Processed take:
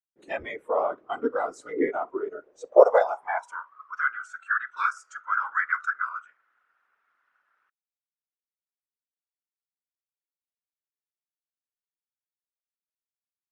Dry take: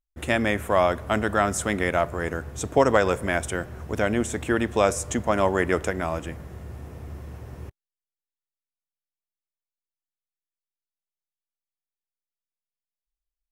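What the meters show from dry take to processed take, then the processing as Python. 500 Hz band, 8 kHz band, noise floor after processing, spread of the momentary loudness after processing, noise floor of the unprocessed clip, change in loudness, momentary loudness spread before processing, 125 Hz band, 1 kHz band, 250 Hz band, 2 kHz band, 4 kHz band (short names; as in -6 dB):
-1.5 dB, under -20 dB, under -85 dBFS, 18 LU, under -85 dBFS, -2.0 dB, 18 LU, under -30 dB, -1.5 dB, -10.5 dB, -1.0 dB, under -15 dB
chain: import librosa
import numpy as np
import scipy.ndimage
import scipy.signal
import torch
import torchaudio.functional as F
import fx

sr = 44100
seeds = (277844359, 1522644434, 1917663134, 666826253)

y = fx.cheby_harmonics(x, sr, harmonics=(3, 4, 5), levels_db=(-15, -29, -23), full_scale_db=-5.0)
y = scipy.signal.sosfilt(scipy.signal.butter(2, 3600.0, 'lowpass', fs=sr, output='sos'), y)
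y = fx.filter_sweep_highpass(y, sr, from_hz=370.0, to_hz=1400.0, start_s=2.21, end_s=4.05, q=7.4)
y = fx.whisperise(y, sr, seeds[0])
y = fx.noise_reduce_blind(y, sr, reduce_db=18)
y = y * librosa.db_to_amplitude(-5.5)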